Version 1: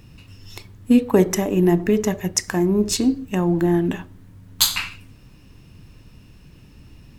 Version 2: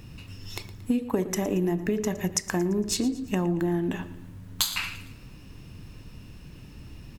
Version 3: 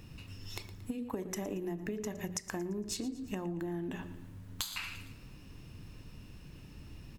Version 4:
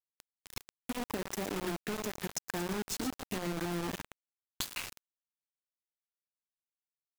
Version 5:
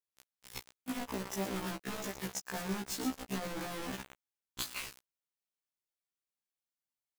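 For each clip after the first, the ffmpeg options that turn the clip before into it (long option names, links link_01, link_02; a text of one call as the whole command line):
ffmpeg -i in.wav -af "acompressor=threshold=-25dB:ratio=6,aecho=1:1:114|228|342|456:0.15|0.0703|0.0331|0.0155,volume=1.5dB" out.wav
ffmpeg -i in.wav -af "bandreject=frequency=60:width_type=h:width=6,bandreject=frequency=120:width_type=h:width=6,bandreject=frequency=180:width_type=h:width=6,bandreject=frequency=240:width_type=h:width=6,acompressor=threshold=-31dB:ratio=3,volume=-5dB" out.wav
ffmpeg -i in.wav -af "acrusher=bits=5:mix=0:aa=0.000001" out.wav
ffmpeg -i in.wav -af "afftfilt=real='re*1.73*eq(mod(b,3),0)':imag='im*1.73*eq(mod(b,3),0)':win_size=2048:overlap=0.75,volume=1dB" out.wav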